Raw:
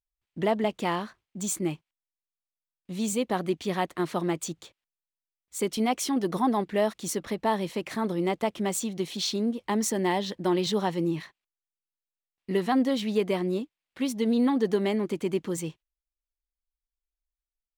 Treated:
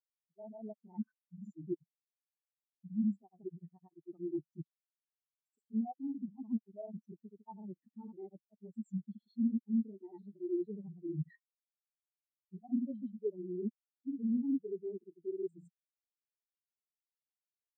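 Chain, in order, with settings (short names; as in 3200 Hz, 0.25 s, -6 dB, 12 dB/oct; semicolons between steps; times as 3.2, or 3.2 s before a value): AGC gain up to 11 dB; in parallel at +2 dB: limiter -15.5 dBFS, peak gain reduction 11.5 dB; on the sum: grains 0.1 s, grains 20/s, pitch spread up and down by 0 st; reverse; compressor 10:1, threshold -28 dBFS, peak gain reduction 21 dB; reverse; spectral expander 4:1; gain -7.5 dB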